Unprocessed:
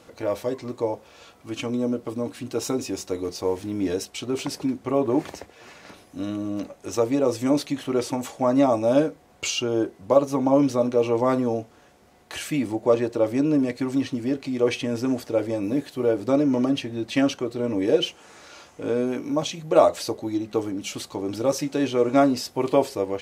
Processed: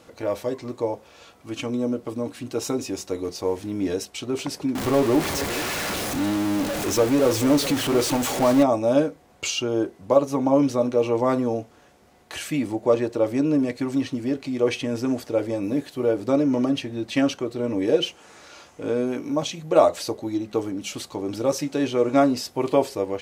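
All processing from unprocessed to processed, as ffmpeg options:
-filter_complex "[0:a]asettb=1/sr,asplit=3[s0][s1][s2];[s0]atrim=end=4.754[s3];[s1]atrim=start=4.75:end=8.63,asetpts=PTS-STARTPTS,afade=t=in:d=0.004:c=qsin,afade=t=out:st=3.876:d=0.004:c=qsin,aeval=exprs='val(0)+0.5*0.075*sgn(val(0))':c=same,aecho=1:1:428:0.2,atrim=end_sample=171108[s4];[s2]atrim=start=8.626[s5];[s3][s4]acrossfade=d=0.004:c1=hsin:c2=qsin[s6];[s6][s5]acrossfade=d=0.004:c1=qsin:c2=hsin"

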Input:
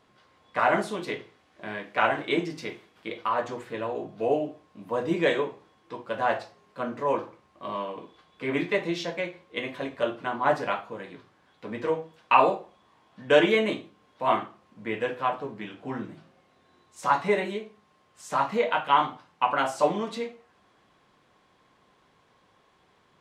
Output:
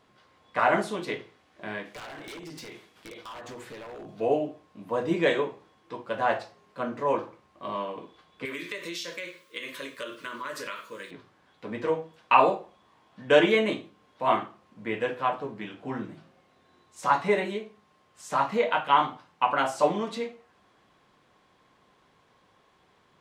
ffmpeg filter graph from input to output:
-filter_complex "[0:a]asettb=1/sr,asplit=3[s0][s1][s2];[s0]atrim=end=1.854[s3];[s1]atrim=start=1.85:end=4.2,asetpts=PTS-STARTPTS,afade=t=in:d=0.004:c=qsin,afade=t=out:st=2.346:d=0.004:c=qsin,highshelf=f=3700:g=7,acompressor=threshold=0.0141:ratio=4:attack=3.2:release=140:knee=1:detection=peak,aeval=exprs='0.0158*(abs(mod(val(0)/0.0158+3,4)-2)-1)':c=same[s4];[s2]atrim=start=4.196[s5];[s3][s4]acrossfade=d=0.004:c1=hsin:c2=qsin[s6];[s6][s5]acrossfade=d=0.004:c1=qsin:c2=hsin,asettb=1/sr,asplit=3[s7][s8][s9];[s7]atrim=end=8.454[s10];[s8]atrim=start=8.45:end=11.11,asetpts=PTS-STARTPTS,afade=t=in:d=0.004:c=qsin,afade=t=out:st=2.656:d=0.004:c=qsin,asuperstop=centerf=770:order=4:qfactor=1.9,aemphasis=mode=production:type=riaa,acompressor=threshold=0.0251:ratio=5:attack=3.2:release=140:knee=1:detection=peak[s11];[s9]atrim=start=11.106[s12];[s10][s11]acrossfade=d=0.004:c1=hsin:c2=qsin[s13];[s13][s12]acrossfade=d=0.004:c1=qsin:c2=hsin"

